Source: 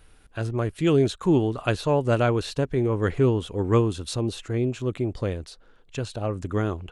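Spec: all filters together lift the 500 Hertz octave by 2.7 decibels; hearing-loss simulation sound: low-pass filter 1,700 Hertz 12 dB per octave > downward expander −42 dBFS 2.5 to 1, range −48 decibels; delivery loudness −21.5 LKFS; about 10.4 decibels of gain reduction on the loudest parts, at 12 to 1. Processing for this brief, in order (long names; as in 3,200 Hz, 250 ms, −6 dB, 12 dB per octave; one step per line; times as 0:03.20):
parametric band 500 Hz +3.5 dB
downward compressor 12 to 1, threshold −24 dBFS
low-pass filter 1,700 Hz 12 dB per octave
downward expander −42 dBFS 2.5 to 1, range −48 dB
level +9 dB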